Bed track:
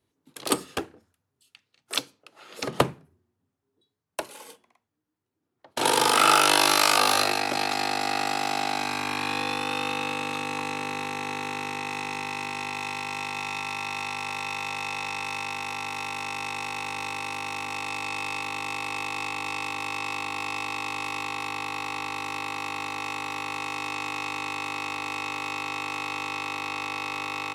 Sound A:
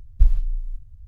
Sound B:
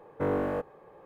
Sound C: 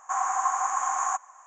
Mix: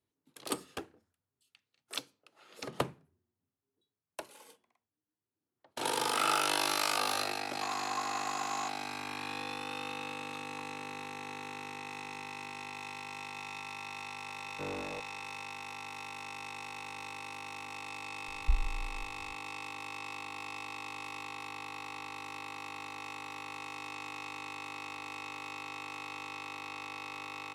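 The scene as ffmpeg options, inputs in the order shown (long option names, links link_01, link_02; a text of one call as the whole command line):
ffmpeg -i bed.wav -i cue0.wav -i cue1.wav -i cue2.wav -filter_complex "[0:a]volume=-11dB[link_01];[3:a]atrim=end=1.46,asetpts=PTS-STARTPTS,volume=-12dB,afade=type=in:duration=0.004:curve=hsin,afade=type=out:start_time=1.456:duration=0.004:curve=hsin,adelay=7520[link_02];[2:a]atrim=end=1.05,asetpts=PTS-STARTPTS,volume=-12.5dB,afade=type=in:duration=0.004:curve=hsin,afade=type=out:start_time=1.046:duration=0.004:curve=hsin,adelay=14390[link_03];[1:a]atrim=end=1.07,asetpts=PTS-STARTPTS,volume=-13.5dB,afade=type=in:duration=0.004:curve=hsin,afade=type=out:start_time=1.066:duration=0.004:curve=hsin,adelay=806148S[link_04];[link_01][link_02][link_03][link_04]amix=inputs=4:normalize=0" out.wav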